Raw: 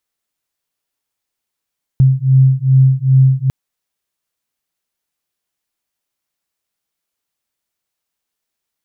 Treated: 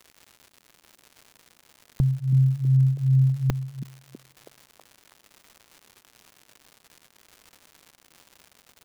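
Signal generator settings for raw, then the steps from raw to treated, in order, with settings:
beating tones 131 Hz, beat 2.5 Hz, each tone -10.5 dBFS 1.50 s
peaking EQ 110 Hz -14.5 dB 1.1 oct; crackle 230 per s -37 dBFS; on a send: repeats whose band climbs or falls 324 ms, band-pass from 190 Hz, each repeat 0.7 oct, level -5.5 dB

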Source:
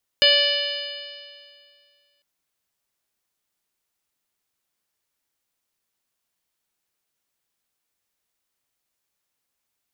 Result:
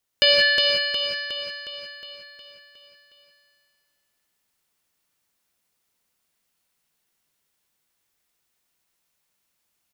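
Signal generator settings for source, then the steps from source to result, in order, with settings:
stretched partials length 2.00 s, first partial 573 Hz, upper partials -19.5/-2.5/-5/6/-4/-1/0 dB, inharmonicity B 0.0026, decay 2.13 s, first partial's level -20 dB
on a send: feedback delay 362 ms, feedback 55%, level -3.5 dB; on the sum: gated-style reverb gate 210 ms rising, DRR 0 dB

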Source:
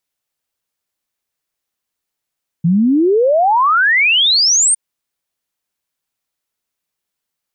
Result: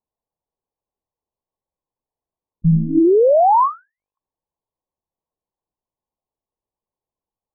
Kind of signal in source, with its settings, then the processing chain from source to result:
log sweep 160 Hz -> 9.1 kHz 2.11 s -9 dBFS
steep low-pass 1.1 kHz 96 dB/octave; monotone LPC vocoder at 8 kHz 160 Hz

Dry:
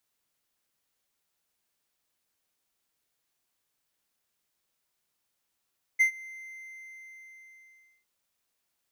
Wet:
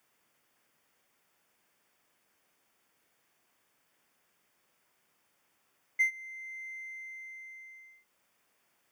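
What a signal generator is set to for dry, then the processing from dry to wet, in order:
ADSR triangle 2.08 kHz, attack 19 ms, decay 99 ms, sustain -23.5 dB, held 0.27 s, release 1790 ms -15 dBFS
peaking EQ 2.1 kHz +2 dB; band-stop 4 kHz, Q 7.3; three bands compressed up and down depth 40%

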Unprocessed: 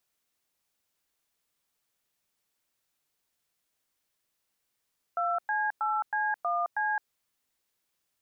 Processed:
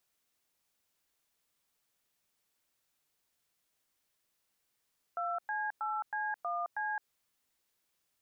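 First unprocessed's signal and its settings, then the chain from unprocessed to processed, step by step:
DTMF "2C8C1C", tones 215 ms, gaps 104 ms, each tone -28.5 dBFS
peak limiter -29 dBFS

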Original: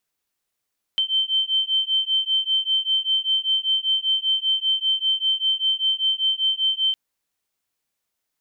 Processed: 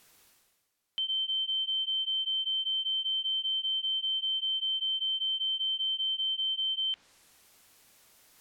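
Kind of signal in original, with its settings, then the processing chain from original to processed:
beating tones 3.1 kHz, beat 5.1 Hz, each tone -22 dBFS 5.96 s
low-pass that closes with the level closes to 3 kHz, closed at -20 dBFS; peak limiter -27 dBFS; reverse; upward compressor, threshold -44 dBFS; reverse

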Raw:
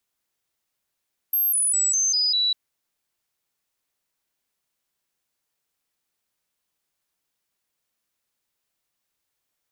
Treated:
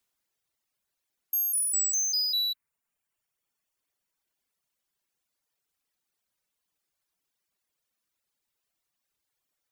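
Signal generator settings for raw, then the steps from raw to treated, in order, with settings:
stepped sine 12.5 kHz down, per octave 3, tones 6, 0.20 s, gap 0.00 s -18.5 dBFS
saturation -24 dBFS; reverb removal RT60 1.9 s

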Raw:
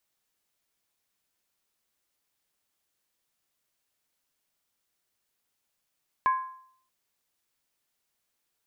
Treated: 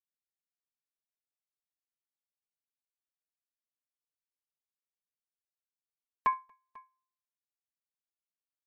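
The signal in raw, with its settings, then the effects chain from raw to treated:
skin hit, lowest mode 1.04 kHz, decay 0.62 s, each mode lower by 11.5 dB, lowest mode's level -18 dB
comb 4.5 ms, depth 97%; on a send: multi-tap echo 69/234/494 ms -19/-12.5/-9.5 dB; on the sum: upward expansion 2.5:1, over -44 dBFS

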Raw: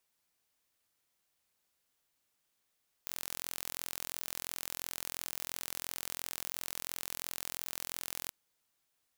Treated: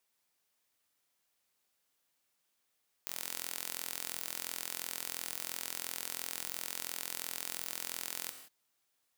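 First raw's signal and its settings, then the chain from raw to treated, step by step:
pulse train 42.9 per s, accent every 0, -11.5 dBFS 5.23 s
bass shelf 120 Hz -7.5 dB; gated-style reverb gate 200 ms flat, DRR 7.5 dB

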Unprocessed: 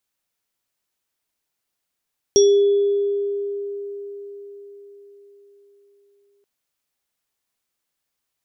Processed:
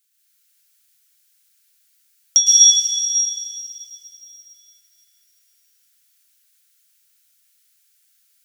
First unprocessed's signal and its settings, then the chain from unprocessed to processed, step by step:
sine partials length 4.08 s, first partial 403 Hz, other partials 3.41/5.64 kHz, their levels -17.5/-3.5 dB, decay 4.84 s, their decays 1.33/0.29 s, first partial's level -9.5 dB
brick-wall FIR high-pass 1.3 kHz; treble shelf 3.3 kHz +12 dB; plate-style reverb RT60 3.4 s, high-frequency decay 0.9×, pre-delay 100 ms, DRR -7 dB

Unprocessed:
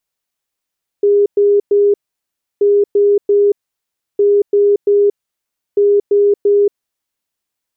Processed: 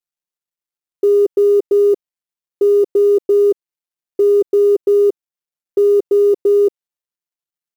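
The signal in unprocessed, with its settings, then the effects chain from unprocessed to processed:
beep pattern sine 407 Hz, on 0.23 s, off 0.11 s, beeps 3, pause 0.67 s, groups 4, -7.5 dBFS
companding laws mixed up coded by A; comb 5.7 ms, depth 70%

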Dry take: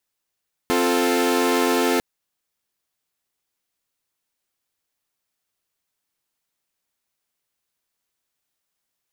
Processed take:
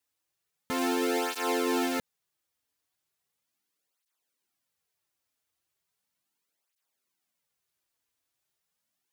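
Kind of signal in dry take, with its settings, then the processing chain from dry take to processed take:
chord C4/F4/A4 saw, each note -19.5 dBFS 1.30 s
peak limiter -18 dBFS; cancelling through-zero flanger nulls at 0.37 Hz, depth 5.6 ms

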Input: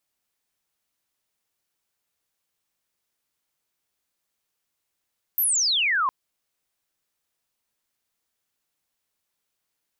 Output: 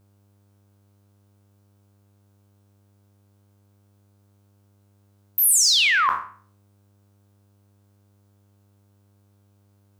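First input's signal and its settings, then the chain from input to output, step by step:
sweep logarithmic 14 kHz -> 1 kHz -19 dBFS -> -19.5 dBFS 0.71 s
spectral sustain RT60 0.45 s; mains buzz 100 Hz, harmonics 16, -63 dBFS -8 dB/octave; in parallel at -9 dB: saturation -21 dBFS

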